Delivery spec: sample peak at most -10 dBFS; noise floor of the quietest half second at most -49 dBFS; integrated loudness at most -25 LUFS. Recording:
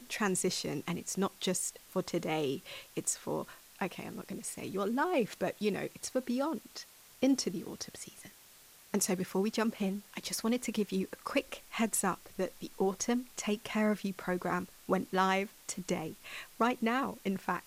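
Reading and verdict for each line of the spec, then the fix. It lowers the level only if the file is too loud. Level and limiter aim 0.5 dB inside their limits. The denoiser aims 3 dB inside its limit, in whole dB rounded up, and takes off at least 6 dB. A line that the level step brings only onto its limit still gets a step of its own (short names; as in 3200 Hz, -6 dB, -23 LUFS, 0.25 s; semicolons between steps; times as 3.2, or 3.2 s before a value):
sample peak -16.0 dBFS: OK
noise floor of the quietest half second -58 dBFS: OK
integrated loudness -34.5 LUFS: OK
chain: none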